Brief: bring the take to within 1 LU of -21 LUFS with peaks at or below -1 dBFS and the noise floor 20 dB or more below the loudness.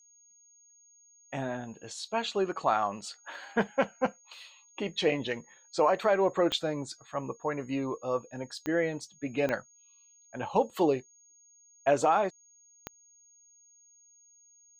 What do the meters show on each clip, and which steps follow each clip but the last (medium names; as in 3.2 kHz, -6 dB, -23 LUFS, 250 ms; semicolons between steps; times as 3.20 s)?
clicks found 4; steady tone 6.6 kHz; tone level -58 dBFS; loudness -31.0 LUFS; peak level -13.5 dBFS; loudness target -21.0 LUFS
-> de-click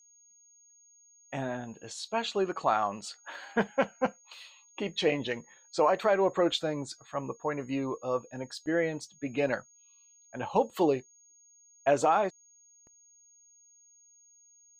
clicks found 0; steady tone 6.6 kHz; tone level -58 dBFS
-> band-stop 6.6 kHz, Q 30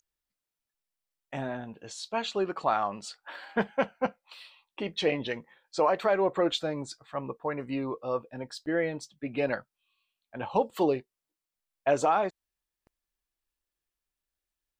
steady tone not found; loudness -30.5 LUFS; peak level -13.5 dBFS; loudness target -21.0 LUFS
-> trim +9.5 dB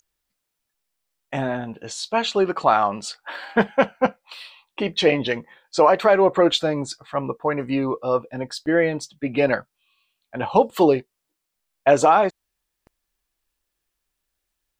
loudness -21.0 LUFS; peak level -4.0 dBFS; noise floor -80 dBFS